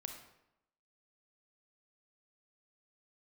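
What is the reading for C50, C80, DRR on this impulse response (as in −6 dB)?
5.5 dB, 8.5 dB, 4.0 dB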